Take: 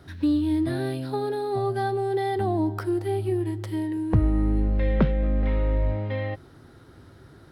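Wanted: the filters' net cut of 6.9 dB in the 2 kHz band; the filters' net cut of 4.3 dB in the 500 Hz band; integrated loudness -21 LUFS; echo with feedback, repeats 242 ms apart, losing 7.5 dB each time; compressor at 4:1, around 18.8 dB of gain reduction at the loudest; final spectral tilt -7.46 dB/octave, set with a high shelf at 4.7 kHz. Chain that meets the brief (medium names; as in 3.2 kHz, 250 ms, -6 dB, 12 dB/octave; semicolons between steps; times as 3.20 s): peaking EQ 500 Hz -6 dB; peaking EQ 2 kHz -7.5 dB; treble shelf 4.7 kHz -4.5 dB; compression 4:1, threshold -39 dBFS; feedback delay 242 ms, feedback 42%, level -7.5 dB; trim +19 dB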